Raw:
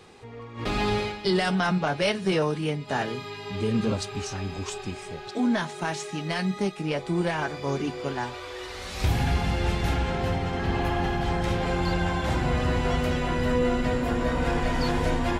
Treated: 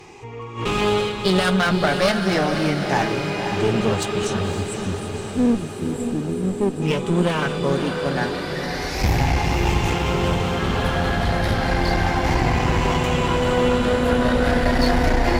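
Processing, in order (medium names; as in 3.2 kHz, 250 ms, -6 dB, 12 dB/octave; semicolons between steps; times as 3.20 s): drifting ripple filter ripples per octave 0.72, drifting +0.32 Hz, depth 10 dB; spectral selection erased 4.51–6.82 s, 470–7200 Hz; one-sided clip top -28.5 dBFS; echo that smears into a reverb 550 ms, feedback 67%, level -7 dB; trim +6 dB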